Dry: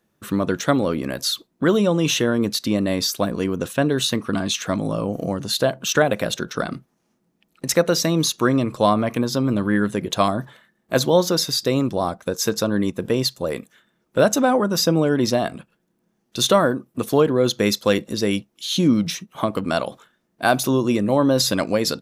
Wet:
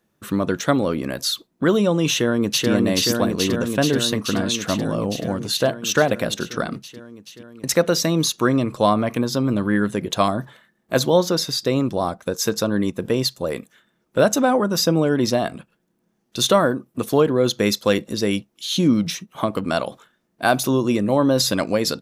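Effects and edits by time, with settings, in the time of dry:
0:02.10–0:02.69: delay throw 430 ms, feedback 80%, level −1.5 dB
0:11.18–0:11.87: high-shelf EQ 6,400 Hz −5 dB

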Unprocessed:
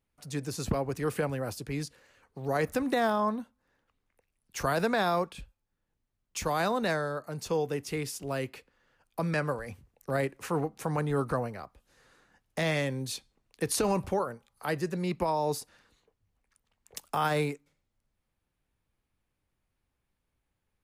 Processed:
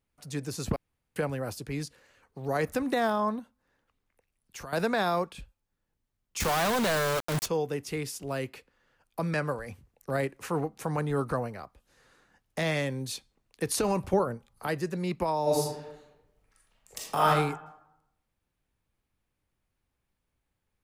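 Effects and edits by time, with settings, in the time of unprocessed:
0:00.76–0:01.16: fill with room tone
0:03.39–0:04.73: downward compressor, threshold −39 dBFS
0:06.40–0:07.46: log-companded quantiser 2 bits
0:14.13–0:14.67: low-shelf EQ 440 Hz +9.5 dB
0:15.42–0:17.27: thrown reverb, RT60 0.87 s, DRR −5 dB

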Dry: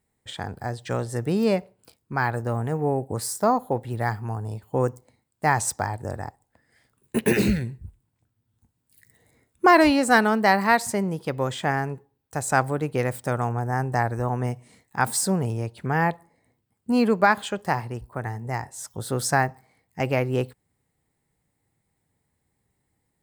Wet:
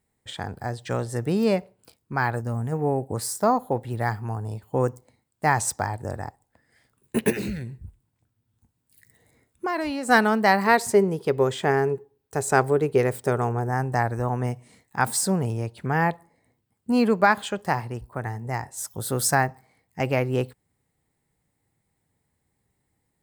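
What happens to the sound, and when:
0:02.41–0:02.72: gain on a spectral selection 260–4,500 Hz −7 dB
0:07.30–0:10.09: downward compressor 2 to 1, threshold −33 dBFS
0:10.66–0:13.69: parametric band 410 Hz +13.5 dB 0.27 octaves
0:18.77–0:19.35: parametric band 16,000 Hz +12.5 dB 0.85 octaves

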